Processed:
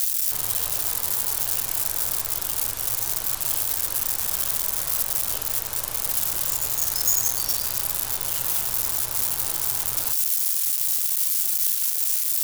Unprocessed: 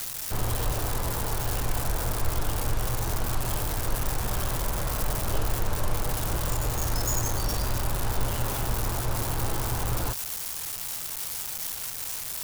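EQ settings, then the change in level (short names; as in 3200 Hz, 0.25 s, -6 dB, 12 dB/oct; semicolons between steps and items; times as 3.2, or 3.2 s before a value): tilt +2.5 dB/oct; high shelf 2600 Hz +7.5 dB; -5.5 dB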